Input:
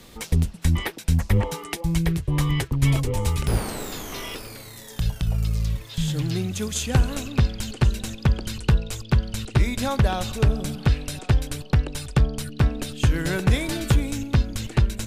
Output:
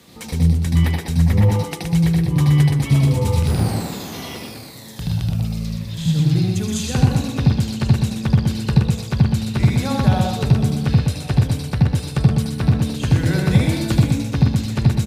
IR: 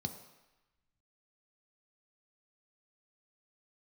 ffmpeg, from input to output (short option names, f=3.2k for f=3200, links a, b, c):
-filter_complex "[0:a]highpass=77,aecho=1:1:123:0.562,asplit=2[a][b];[1:a]atrim=start_sample=2205,adelay=76[c];[b][c]afir=irnorm=-1:irlink=0,volume=-2dB[d];[a][d]amix=inputs=2:normalize=0,volume=-1.5dB"